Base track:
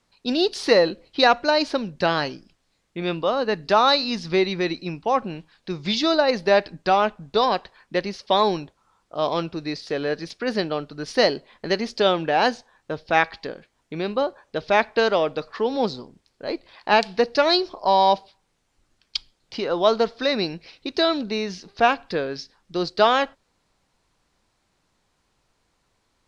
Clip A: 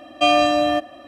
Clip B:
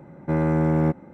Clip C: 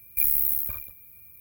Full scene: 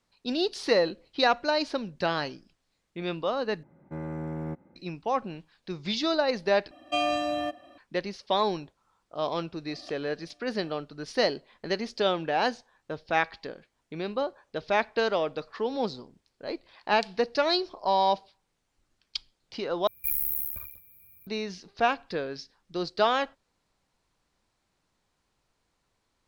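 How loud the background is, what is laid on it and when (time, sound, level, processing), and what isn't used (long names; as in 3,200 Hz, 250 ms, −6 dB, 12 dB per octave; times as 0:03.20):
base track −6.5 dB
0:03.63: overwrite with B −14 dB
0:06.71: overwrite with A −11 dB
0:09.68: mix in A −10.5 dB + gate with flip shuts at −19 dBFS, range −36 dB
0:19.87: overwrite with C −6 dB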